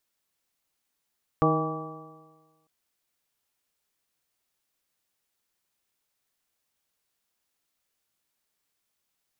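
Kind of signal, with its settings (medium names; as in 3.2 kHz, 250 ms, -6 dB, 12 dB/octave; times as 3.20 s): stretched partials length 1.25 s, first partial 156 Hz, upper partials 0/-0.5/-4.5/-3/-14.5/1 dB, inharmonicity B 0.0023, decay 1.41 s, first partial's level -23.5 dB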